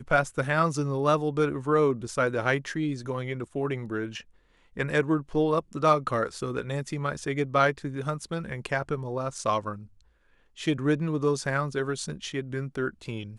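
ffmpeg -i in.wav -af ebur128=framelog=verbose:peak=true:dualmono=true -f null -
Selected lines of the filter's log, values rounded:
Integrated loudness:
  I:         -25.0 LUFS
  Threshold: -35.4 LUFS
Loudness range:
  LRA:         3.5 LU
  Threshold: -45.6 LUFS
  LRA low:   -27.1 LUFS
  LRA high:  -23.6 LUFS
True peak:
  Peak:       -9.3 dBFS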